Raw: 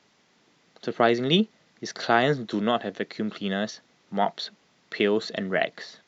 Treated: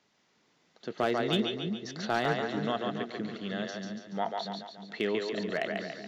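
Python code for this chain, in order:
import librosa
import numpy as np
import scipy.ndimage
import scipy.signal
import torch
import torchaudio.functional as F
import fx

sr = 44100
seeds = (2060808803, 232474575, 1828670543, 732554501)

y = fx.echo_split(x, sr, split_hz=330.0, low_ms=326, high_ms=142, feedback_pct=52, wet_db=-3.5)
y = np.clip(10.0 ** (11.0 / 20.0) * y, -1.0, 1.0) / 10.0 ** (11.0 / 20.0)
y = y * 10.0 ** (-8.0 / 20.0)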